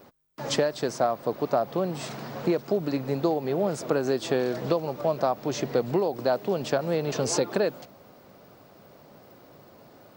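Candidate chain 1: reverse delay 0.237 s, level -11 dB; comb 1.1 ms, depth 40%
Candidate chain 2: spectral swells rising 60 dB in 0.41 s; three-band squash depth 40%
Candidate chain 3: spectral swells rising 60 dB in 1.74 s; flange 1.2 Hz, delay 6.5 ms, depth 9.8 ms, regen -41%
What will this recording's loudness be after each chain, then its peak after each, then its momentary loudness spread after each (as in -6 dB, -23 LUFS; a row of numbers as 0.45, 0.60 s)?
-28.0, -26.0, -27.0 LUFS; -10.5, -9.5, -11.0 dBFS; 5, 18, 4 LU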